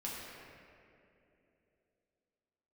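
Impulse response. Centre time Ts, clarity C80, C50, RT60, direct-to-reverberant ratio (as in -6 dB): 0.148 s, 0.0 dB, -1.5 dB, 2.9 s, -6.0 dB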